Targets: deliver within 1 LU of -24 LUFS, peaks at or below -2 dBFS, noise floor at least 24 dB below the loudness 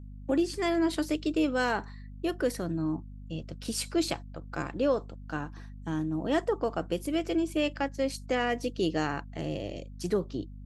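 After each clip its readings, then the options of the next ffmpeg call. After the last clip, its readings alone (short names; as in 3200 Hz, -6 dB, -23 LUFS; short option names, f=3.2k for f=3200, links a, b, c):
hum 50 Hz; harmonics up to 250 Hz; hum level -41 dBFS; loudness -31.0 LUFS; peak -16.5 dBFS; loudness target -24.0 LUFS
-> -af "bandreject=f=50:t=h:w=4,bandreject=f=100:t=h:w=4,bandreject=f=150:t=h:w=4,bandreject=f=200:t=h:w=4,bandreject=f=250:t=h:w=4"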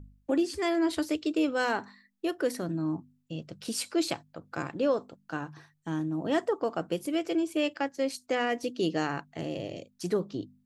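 hum none; loudness -31.0 LUFS; peak -16.0 dBFS; loudness target -24.0 LUFS
-> -af "volume=7dB"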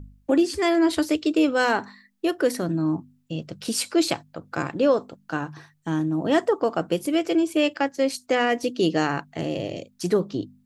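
loudness -24.0 LUFS; peak -9.0 dBFS; noise floor -64 dBFS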